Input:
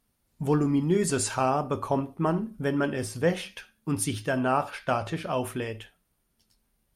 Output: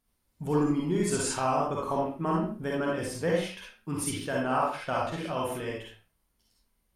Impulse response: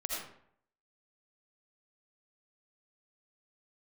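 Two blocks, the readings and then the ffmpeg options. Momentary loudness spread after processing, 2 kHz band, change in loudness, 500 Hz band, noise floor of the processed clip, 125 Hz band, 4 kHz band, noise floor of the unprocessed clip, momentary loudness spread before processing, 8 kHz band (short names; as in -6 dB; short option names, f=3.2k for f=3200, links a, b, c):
10 LU, -2.0 dB, -2.0 dB, -1.5 dB, -76 dBFS, -4.0 dB, -1.0 dB, -74 dBFS, 10 LU, -2.0 dB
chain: -filter_complex "[1:a]atrim=start_sample=2205,afade=t=out:st=0.44:d=0.01,atrim=end_sample=19845,asetrate=70560,aresample=44100[a];[0:a][a]afir=irnorm=-1:irlink=0"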